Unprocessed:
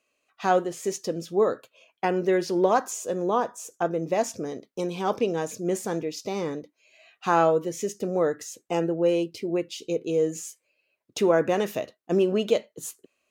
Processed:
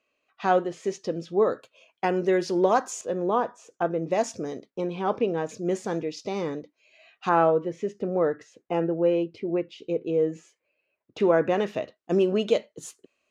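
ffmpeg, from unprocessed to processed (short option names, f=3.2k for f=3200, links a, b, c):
-af "asetnsamples=n=441:p=0,asendcmd='1.52 lowpass f 8000;3.01 lowpass f 3300;4.11 lowpass f 7300;4.7 lowpass f 2700;5.49 lowpass f 5200;7.29 lowpass f 2300;11.2 lowpass f 3800;11.96 lowpass f 6800',lowpass=4.1k"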